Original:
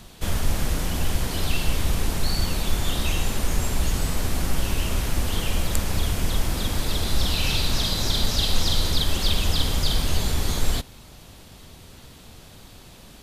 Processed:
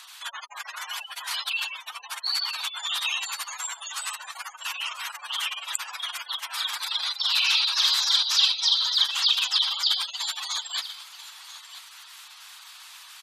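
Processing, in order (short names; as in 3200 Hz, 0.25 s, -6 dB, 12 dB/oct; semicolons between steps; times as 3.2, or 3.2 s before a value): spectral gate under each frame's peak -30 dB strong; steep high-pass 1000 Hz 36 dB/oct; echo 0.988 s -15 dB; gain +6 dB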